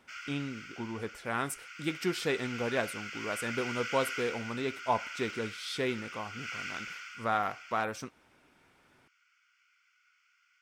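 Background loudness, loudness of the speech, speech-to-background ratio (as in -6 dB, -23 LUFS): -41.0 LUFS, -35.0 LUFS, 6.0 dB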